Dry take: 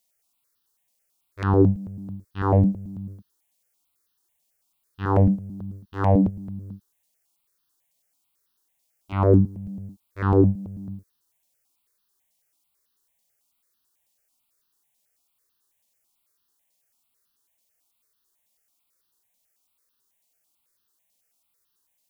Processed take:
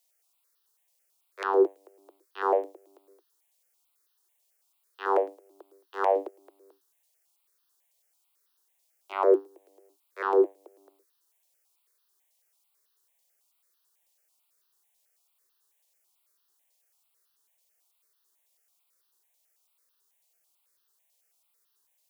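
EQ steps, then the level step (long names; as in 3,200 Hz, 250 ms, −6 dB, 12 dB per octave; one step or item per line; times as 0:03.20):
Butterworth high-pass 340 Hz 96 dB per octave
0.0 dB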